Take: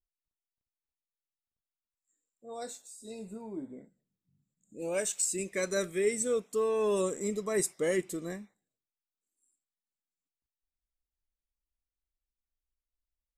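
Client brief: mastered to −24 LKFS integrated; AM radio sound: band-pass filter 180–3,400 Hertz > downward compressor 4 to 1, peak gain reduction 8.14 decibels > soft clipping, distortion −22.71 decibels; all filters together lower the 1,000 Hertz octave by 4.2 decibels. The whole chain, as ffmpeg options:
ffmpeg -i in.wav -af "highpass=180,lowpass=3400,equalizer=frequency=1000:width_type=o:gain=-5,acompressor=threshold=-33dB:ratio=4,asoftclip=threshold=-28dB,volume=16dB" out.wav

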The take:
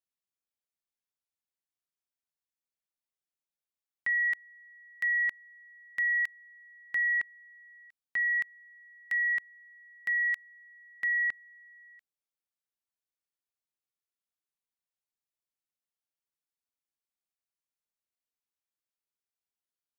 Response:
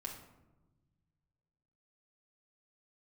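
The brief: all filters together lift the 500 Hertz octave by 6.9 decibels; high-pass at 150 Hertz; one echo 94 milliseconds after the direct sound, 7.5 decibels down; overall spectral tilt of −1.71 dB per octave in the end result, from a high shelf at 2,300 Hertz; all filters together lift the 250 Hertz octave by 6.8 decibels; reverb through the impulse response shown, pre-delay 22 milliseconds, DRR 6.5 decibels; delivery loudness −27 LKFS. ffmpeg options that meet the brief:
-filter_complex "[0:a]highpass=150,equalizer=frequency=250:width_type=o:gain=7,equalizer=frequency=500:width_type=o:gain=7,highshelf=frequency=2300:gain=-4.5,aecho=1:1:94:0.422,asplit=2[link_01][link_02];[1:a]atrim=start_sample=2205,adelay=22[link_03];[link_02][link_03]afir=irnorm=-1:irlink=0,volume=-4.5dB[link_04];[link_01][link_04]amix=inputs=2:normalize=0,volume=6.5dB"

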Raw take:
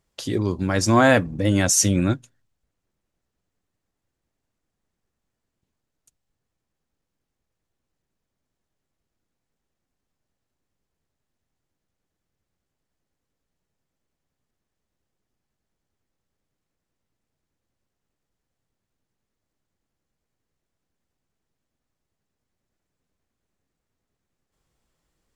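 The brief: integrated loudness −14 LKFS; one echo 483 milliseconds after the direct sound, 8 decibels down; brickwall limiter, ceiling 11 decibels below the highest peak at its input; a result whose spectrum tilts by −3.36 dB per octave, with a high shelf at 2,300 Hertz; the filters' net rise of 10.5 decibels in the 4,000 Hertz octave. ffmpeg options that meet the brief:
ffmpeg -i in.wav -af "highshelf=frequency=2300:gain=6,equalizer=frequency=4000:width_type=o:gain=8.5,alimiter=limit=-6.5dB:level=0:latency=1,aecho=1:1:483:0.398,volume=5dB" out.wav

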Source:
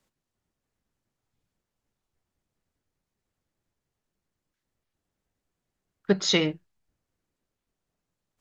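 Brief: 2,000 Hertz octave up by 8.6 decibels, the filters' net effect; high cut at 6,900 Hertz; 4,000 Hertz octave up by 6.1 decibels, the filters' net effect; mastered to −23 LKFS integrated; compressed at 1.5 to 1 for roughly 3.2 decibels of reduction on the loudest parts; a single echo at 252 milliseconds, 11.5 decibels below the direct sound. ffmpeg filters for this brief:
ffmpeg -i in.wav -af "lowpass=6900,equalizer=frequency=2000:width_type=o:gain=8.5,equalizer=frequency=4000:width_type=o:gain=5,acompressor=threshold=-23dB:ratio=1.5,aecho=1:1:252:0.266,volume=1dB" out.wav

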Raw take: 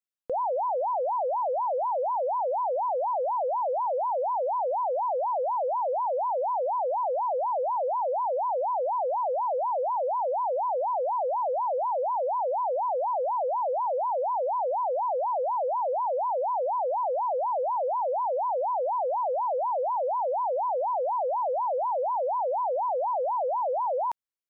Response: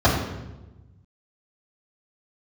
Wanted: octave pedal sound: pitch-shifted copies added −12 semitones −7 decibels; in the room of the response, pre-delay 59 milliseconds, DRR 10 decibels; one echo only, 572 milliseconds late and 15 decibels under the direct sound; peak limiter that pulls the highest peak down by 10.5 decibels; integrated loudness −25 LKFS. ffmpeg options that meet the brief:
-filter_complex "[0:a]alimiter=level_in=10.5dB:limit=-24dB:level=0:latency=1,volume=-10.5dB,aecho=1:1:572:0.178,asplit=2[link_01][link_02];[1:a]atrim=start_sample=2205,adelay=59[link_03];[link_02][link_03]afir=irnorm=-1:irlink=0,volume=-31dB[link_04];[link_01][link_04]amix=inputs=2:normalize=0,asplit=2[link_05][link_06];[link_06]asetrate=22050,aresample=44100,atempo=2,volume=-7dB[link_07];[link_05][link_07]amix=inputs=2:normalize=0,volume=11dB"

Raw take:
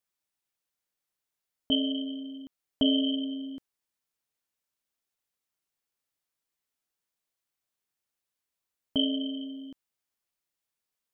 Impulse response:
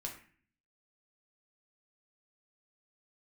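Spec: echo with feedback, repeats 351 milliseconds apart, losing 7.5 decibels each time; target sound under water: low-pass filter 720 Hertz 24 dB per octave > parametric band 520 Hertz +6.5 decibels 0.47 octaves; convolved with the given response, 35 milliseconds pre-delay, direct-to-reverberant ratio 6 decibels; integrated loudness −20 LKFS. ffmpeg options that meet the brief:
-filter_complex "[0:a]aecho=1:1:351|702|1053|1404|1755:0.422|0.177|0.0744|0.0312|0.0131,asplit=2[link_01][link_02];[1:a]atrim=start_sample=2205,adelay=35[link_03];[link_02][link_03]afir=irnorm=-1:irlink=0,volume=-4.5dB[link_04];[link_01][link_04]amix=inputs=2:normalize=0,lowpass=frequency=720:width=0.5412,lowpass=frequency=720:width=1.3066,equalizer=frequency=520:width_type=o:width=0.47:gain=6.5,volume=13.5dB"

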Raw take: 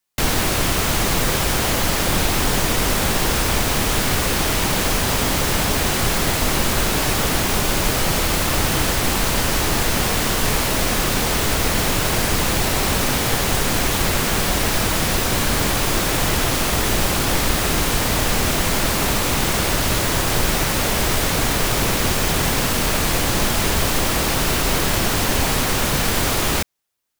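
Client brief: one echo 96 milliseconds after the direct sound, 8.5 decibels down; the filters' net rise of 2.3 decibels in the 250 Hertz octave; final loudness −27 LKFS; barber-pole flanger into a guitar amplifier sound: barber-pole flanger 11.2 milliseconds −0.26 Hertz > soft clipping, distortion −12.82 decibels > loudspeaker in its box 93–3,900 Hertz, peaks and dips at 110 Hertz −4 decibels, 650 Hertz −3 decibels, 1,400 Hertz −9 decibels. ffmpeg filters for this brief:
ffmpeg -i in.wav -filter_complex "[0:a]equalizer=frequency=250:width_type=o:gain=3.5,aecho=1:1:96:0.376,asplit=2[link_01][link_02];[link_02]adelay=11.2,afreqshift=-0.26[link_03];[link_01][link_03]amix=inputs=2:normalize=1,asoftclip=threshold=-19dB,highpass=93,equalizer=frequency=110:width_type=q:width=4:gain=-4,equalizer=frequency=650:width_type=q:width=4:gain=-3,equalizer=frequency=1400:width_type=q:width=4:gain=-9,lowpass=frequency=3900:width=0.5412,lowpass=frequency=3900:width=1.3066,volume=0.5dB" out.wav

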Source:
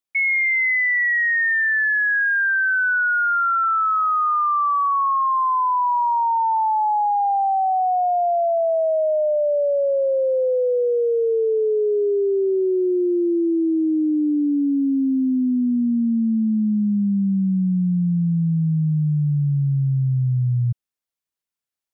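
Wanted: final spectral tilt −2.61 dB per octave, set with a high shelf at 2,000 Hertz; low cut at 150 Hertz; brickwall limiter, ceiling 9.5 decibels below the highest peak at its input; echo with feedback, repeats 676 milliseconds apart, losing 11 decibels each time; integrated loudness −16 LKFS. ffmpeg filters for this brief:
ffmpeg -i in.wav -af "highpass=150,highshelf=frequency=2000:gain=-7.5,alimiter=level_in=2dB:limit=-24dB:level=0:latency=1,volume=-2dB,aecho=1:1:676|1352|2028:0.282|0.0789|0.0221,volume=13dB" out.wav

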